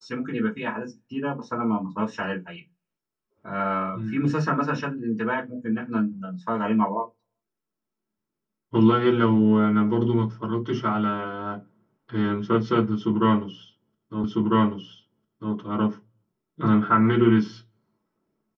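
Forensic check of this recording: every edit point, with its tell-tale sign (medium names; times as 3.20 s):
14.24 s: repeat of the last 1.3 s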